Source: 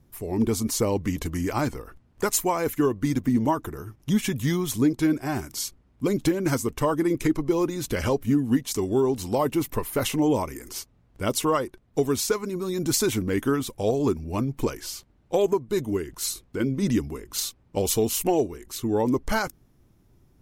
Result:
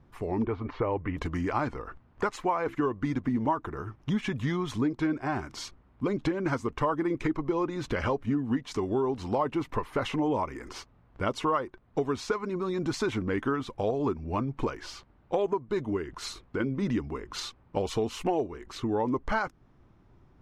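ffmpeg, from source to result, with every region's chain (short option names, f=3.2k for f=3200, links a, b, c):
-filter_complex "[0:a]asettb=1/sr,asplit=3[a][b][c];[a]atrim=end=0.444[d];[b]atrim=start=0.44:end=1.17,asetpts=PTS-STARTPTS,afade=t=in:d=0.004:c=qsin,afade=t=out:st=0.726:d=0.004:c=qsin,lowpass=f=2.6k:w=0.5412,lowpass=f=2.6k:w=1.3066,equalizer=f=210:t=o:w=0.36:g=-11.5[e];[c]atrim=start=1.166[f];[d][e]acrossfade=d=0.004:c1=hsin:c2=qsin[g];[g][f]acrossfade=d=0.004:c1=qsin:c2=hsin,asettb=1/sr,asplit=3[h][i][j];[h]atrim=end=2.314[k];[i]atrim=start=2.31:end=2.75,asetpts=PTS-STARTPTS,afade=t=in:d=0.004:c=qsin,afade=t=out:st=0.436:d=0.004:c=qsin,bass=f=250:g=-2,treble=f=4k:g=-5,bandreject=f=66.98:t=h:w=4,bandreject=f=133.96:t=h:w=4,bandreject=f=200.94:t=h:w=4,bandreject=f=267.92:t=h:w=4,bandreject=f=334.9:t=h:w=4,aeval=exprs='val(0)*gte(abs(val(0)),0.00447)':c=same[l];[j]atrim=start=2.746[m];[k][l]acrossfade=d=0.004:c1=hsin:c2=qsin[n];[n][m]acrossfade=d=0.004:c1=qsin:c2=hsin,lowpass=3.5k,equalizer=f=1.1k:w=0.9:g=7.5,acompressor=threshold=-30dB:ratio=2"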